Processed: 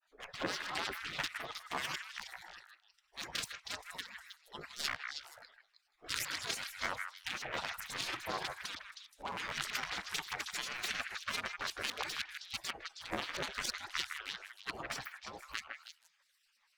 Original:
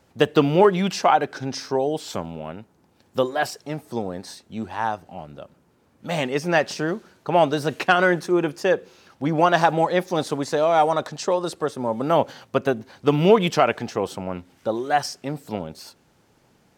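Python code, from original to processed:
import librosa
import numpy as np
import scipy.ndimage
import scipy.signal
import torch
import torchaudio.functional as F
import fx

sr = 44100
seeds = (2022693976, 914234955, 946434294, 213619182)

p1 = fx.wiener(x, sr, points=25)
p2 = fx.spec_gate(p1, sr, threshold_db=-30, keep='weak')
p3 = fx.over_compress(p2, sr, threshold_db=-47.0, ratio=-1.0)
p4 = p3 * (1.0 - 0.39 / 2.0 + 0.39 / 2.0 * np.cos(2.0 * np.pi * 14.0 * (np.arange(len(p3)) / sr)))
p5 = fx.granulator(p4, sr, seeds[0], grain_ms=100.0, per_s=20.0, spray_ms=22.0, spread_st=12)
p6 = p5 + fx.echo_stepped(p5, sr, ms=158, hz=1700.0, octaves=1.4, feedback_pct=70, wet_db=-3.0, dry=0)
y = p6 * 10.0 ** (10.5 / 20.0)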